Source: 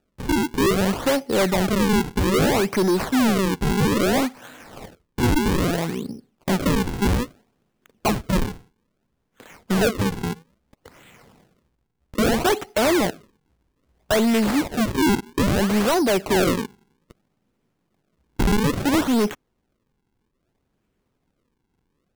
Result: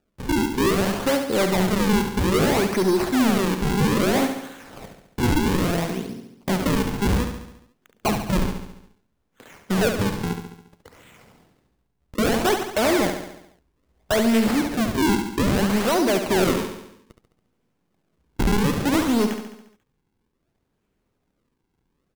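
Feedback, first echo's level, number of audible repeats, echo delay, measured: 57%, -7.5 dB, 6, 70 ms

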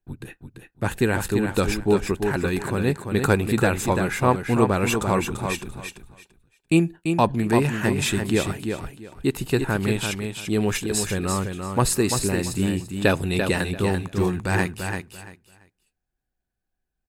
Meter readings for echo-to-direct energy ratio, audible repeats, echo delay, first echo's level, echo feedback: -6.0 dB, 3, 340 ms, -6.0 dB, 21%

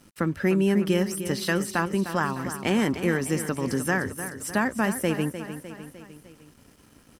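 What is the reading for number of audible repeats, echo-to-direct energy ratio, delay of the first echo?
4, -9.5 dB, 303 ms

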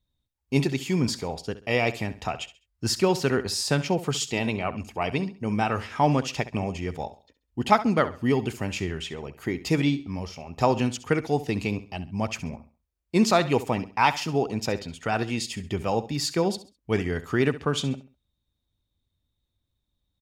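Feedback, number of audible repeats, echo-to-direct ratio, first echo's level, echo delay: 31%, 2, -14.5 dB, -15.0 dB, 67 ms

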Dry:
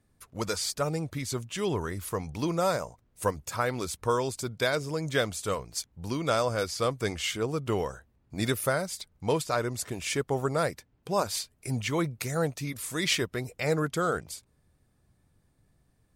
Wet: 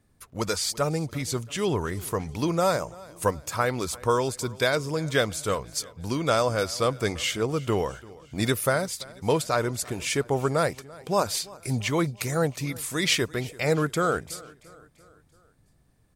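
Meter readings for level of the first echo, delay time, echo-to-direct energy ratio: -21.5 dB, 339 ms, -20.0 dB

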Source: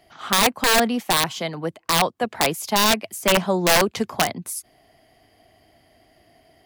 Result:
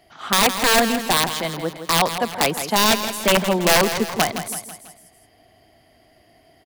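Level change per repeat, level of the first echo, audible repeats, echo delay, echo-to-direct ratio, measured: -6.0 dB, -10.0 dB, 4, 164 ms, -9.0 dB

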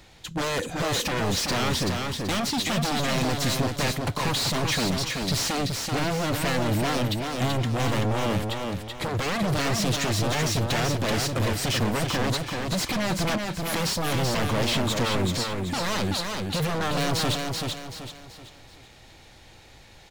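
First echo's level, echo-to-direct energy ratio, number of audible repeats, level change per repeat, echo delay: -4.0 dB, -3.5 dB, 4, -8.5 dB, 382 ms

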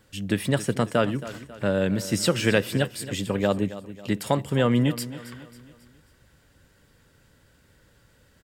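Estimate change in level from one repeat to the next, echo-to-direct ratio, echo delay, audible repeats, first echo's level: -7.0 dB, -14.0 dB, 272 ms, 3, -15.0 dB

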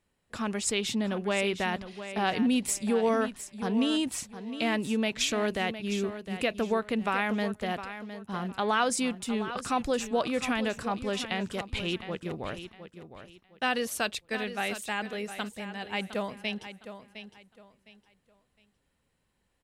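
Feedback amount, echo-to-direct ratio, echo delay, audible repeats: 27%, -11.0 dB, 710 ms, 3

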